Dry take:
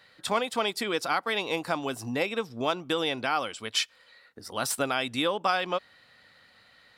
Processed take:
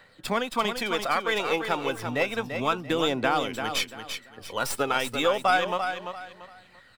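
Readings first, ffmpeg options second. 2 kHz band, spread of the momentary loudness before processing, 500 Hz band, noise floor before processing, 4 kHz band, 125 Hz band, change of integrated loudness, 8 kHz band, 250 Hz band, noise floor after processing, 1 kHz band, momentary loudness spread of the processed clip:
+3.5 dB, 5 LU, +3.0 dB, -60 dBFS, +0.5 dB, +3.0 dB, +2.0 dB, -1.0 dB, +2.0 dB, -56 dBFS, +3.5 dB, 12 LU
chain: -filter_complex "[0:a]aphaser=in_gain=1:out_gain=1:delay=2.4:decay=0.46:speed=0.31:type=triangular,acrossover=split=110|3400[a][b][c];[c]aeval=exprs='max(val(0),0)':c=same[d];[a][b][d]amix=inputs=3:normalize=0,aecho=1:1:341|682|1023:0.422|0.118|0.0331,volume=1.5dB"

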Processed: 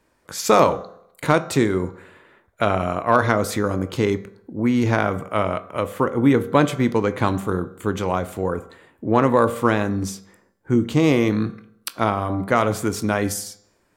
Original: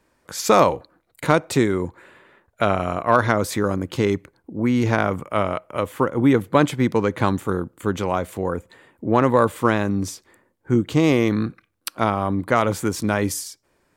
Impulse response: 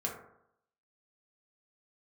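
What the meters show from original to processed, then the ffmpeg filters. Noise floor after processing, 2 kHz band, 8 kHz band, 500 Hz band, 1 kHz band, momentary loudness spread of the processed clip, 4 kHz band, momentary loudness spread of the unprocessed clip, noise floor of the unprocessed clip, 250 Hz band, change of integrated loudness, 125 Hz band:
-64 dBFS, 0.0 dB, 0.0 dB, 0.0 dB, 0.0 dB, 11 LU, 0.0 dB, 11 LU, -67 dBFS, 0.0 dB, 0.0 dB, 0.0 dB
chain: -filter_complex "[0:a]bandreject=f=195.4:t=h:w=4,bandreject=f=390.8:t=h:w=4,bandreject=f=586.2:t=h:w=4,bandreject=f=781.6:t=h:w=4,bandreject=f=977:t=h:w=4,bandreject=f=1.1724k:t=h:w=4,bandreject=f=1.3678k:t=h:w=4,bandreject=f=1.5632k:t=h:w=4,bandreject=f=1.7586k:t=h:w=4,bandreject=f=1.954k:t=h:w=4,bandreject=f=2.1494k:t=h:w=4,bandreject=f=2.3448k:t=h:w=4,bandreject=f=2.5402k:t=h:w=4,bandreject=f=2.7356k:t=h:w=4,bandreject=f=2.931k:t=h:w=4,bandreject=f=3.1264k:t=h:w=4,bandreject=f=3.3218k:t=h:w=4,bandreject=f=3.5172k:t=h:w=4,bandreject=f=3.7126k:t=h:w=4,bandreject=f=3.908k:t=h:w=4,bandreject=f=4.1034k:t=h:w=4,bandreject=f=4.2988k:t=h:w=4,bandreject=f=4.4942k:t=h:w=4,bandreject=f=4.6896k:t=h:w=4,bandreject=f=4.885k:t=h:w=4,bandreject=f=5.0804k:t=h:w=4,bandreject=f=5.2758k:t=h:w=4,bandreject=f=5.4712k:t=h:w=4,bandreject=f=5.6666k:t=h:w=4,bandreject=f=5.862k:t=h:w=4,bandreject=f=6.0574k:t=h:w=4,bandreject=f=6.2528k:t=h:w=4,bandreject=f=6.4482k:t=h:w=4,bandreject=f=6.6436k:t=h:w=4,bandreject=f=6.839k:t=h:w=4,bandreject=f=7.0344k:t=h:w=4,bandreject=f=7.2298k:t=h:w=4,bandreject=f=7.4252k:t=h:w=4,asplit=2[a][b];[1:a]atrim=start_sample=2205,adelay=21[c];[b][c]afir=irnorm=-1:irlink=0,volume=-16.5dB[d];[a][d]amix=inputs=2:normalize=0"

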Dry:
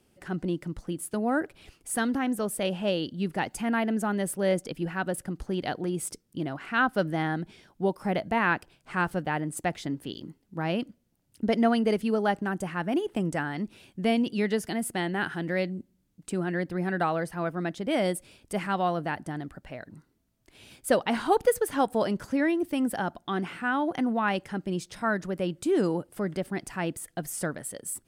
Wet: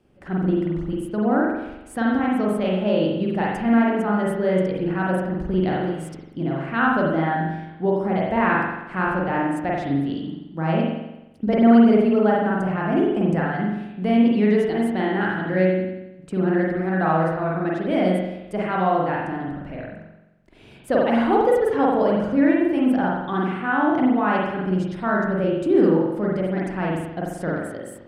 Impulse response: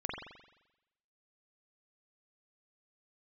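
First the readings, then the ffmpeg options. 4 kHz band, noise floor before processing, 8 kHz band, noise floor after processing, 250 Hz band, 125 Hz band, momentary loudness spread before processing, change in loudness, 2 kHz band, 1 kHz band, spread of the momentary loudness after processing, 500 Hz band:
-0.5 dB, -70 dBFS, under -10 dB, -45 dBFS, +9.0 dB, +8.0 dB, 10 LU, +7.5 dB, +4.5 dB, +7.0 dB, 10 LU, +7.5 dB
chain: -filter_complex "[0:a]lowpass=f=1.6k:p=1,asplit=2[a][b];[b]alimiter=limit=-19.5dB:level=0:latency=1,volume=-1.5dB[c];[a][c]amix=inputs=2:normalize=0[d];[1:a]atrim=start_sample=2205[e];[d][e]afir=irnorm=-1:irlink=0"

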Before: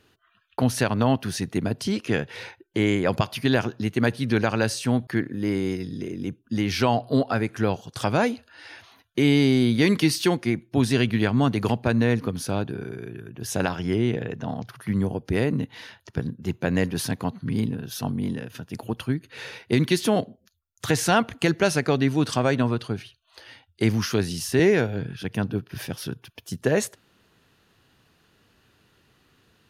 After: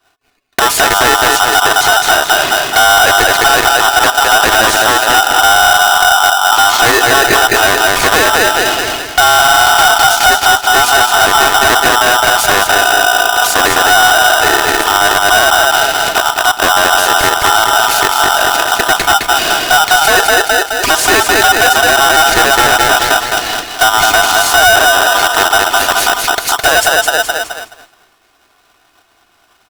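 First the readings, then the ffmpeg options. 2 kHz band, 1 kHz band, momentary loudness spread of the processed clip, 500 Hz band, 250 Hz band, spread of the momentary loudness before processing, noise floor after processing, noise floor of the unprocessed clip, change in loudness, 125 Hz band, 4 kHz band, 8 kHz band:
+23.5 dB, +24.5 dB, 5 LU, +12.0 dB, -1.5 dB, 13 LU, -53 dBFS, -65 dBFS, +16.5 dB, -4.0 dB, +23.5 dB, +23.5 dB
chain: -filter_complex "[0:a]acrossover=split=300|600[a][b][c];[a]acompressor=threshold=-34dB:ratio=4[d];[b]acompressor=threshold=-31dB:ratio=4[e];[c]acompressor=threshold=-38dB:ratio=4[f];[d][e][f]amix=inputs=3:normalize=0,aecho=1:1:211|422|633|844|1055|1266:0.596|0.274|0.126|0.058|0.0267|0.0123,asplit=2[g][h];[h]acompressor=threshold=-43dB:ratio=6,volume=-3dB[i];[g][i]amix=inputs=2:normalize=0,firequalizer=gain_entry='entry(170,0);entry(360,8);entry(2100,4)':delay=0.05:min_phase=1,asoftclip=type=hard:threshold=-19.5dB,lowshelf=f=94:g=9,agate=range=-33dB:threshold=-36dB:ratio=3:detection=peak,aecho=1:1:2.8:0.46,alimiter=level_in=19.5dB:limit=-1dB:release=50:level=0:latency=1,aeval=exprs='val(0)*sgn(sin(2*PI*1100*n/s))':c=same,volume=-1dB"

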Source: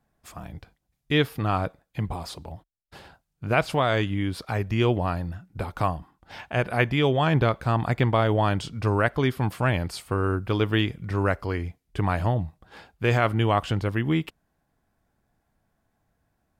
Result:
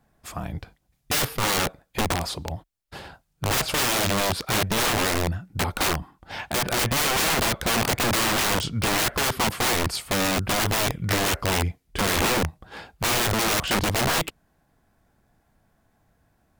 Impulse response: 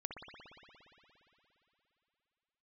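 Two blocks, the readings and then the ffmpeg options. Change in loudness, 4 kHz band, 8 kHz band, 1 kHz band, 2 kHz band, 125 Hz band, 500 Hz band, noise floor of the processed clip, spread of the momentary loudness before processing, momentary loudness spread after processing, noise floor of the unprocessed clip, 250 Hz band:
+2.0 dB, +10.0 dB, +22.5 dB, +1.5 dB, +4.5 dB, -4.5 dB, -1.5 dB, -69 dBFS, 15 LU, 13 LU, -76 dBFS, -2.0 dB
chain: -af "aeval=exprs='(mod(16.8*val(0)+1,2)-1)/16.8':c=same,volume=7dB"

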